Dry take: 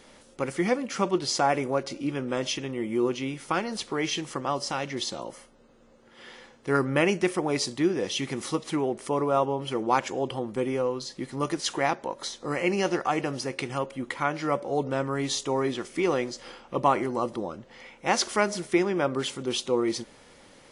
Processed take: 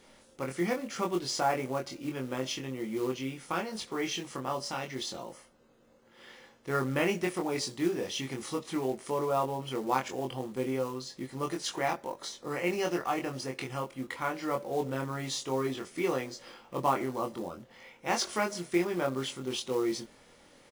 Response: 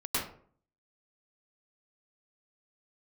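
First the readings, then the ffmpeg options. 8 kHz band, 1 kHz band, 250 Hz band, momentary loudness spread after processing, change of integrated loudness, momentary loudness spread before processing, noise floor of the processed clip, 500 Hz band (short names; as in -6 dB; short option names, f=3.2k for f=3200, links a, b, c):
-5.0 dB, -5.0 dB, -5.0 dB, 10 LU, -5.0 dB, 10 LU, -60 dBFS, -5.5 dB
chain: -filter_complex "[0:a]acrusher=bits=5:mode=log:mix=0:aa=0.000001,asplit=2[a][b];[b]adelay=23,volume=-3dB[c];[a][c]amix=inputs=2:normalize=0,volume=-7dB"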